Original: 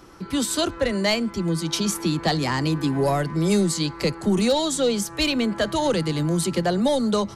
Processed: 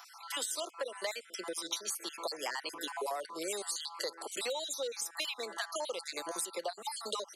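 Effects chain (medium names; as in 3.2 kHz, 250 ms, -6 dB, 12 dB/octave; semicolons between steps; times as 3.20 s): random holes in the spectrogram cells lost 44%; high-pass 500 Hz 24 dB/octave; treble shelf 6.7 kHz +9 dB; compression 6:1, threshold -35 dBFS, peak gain reduction 15.5 dB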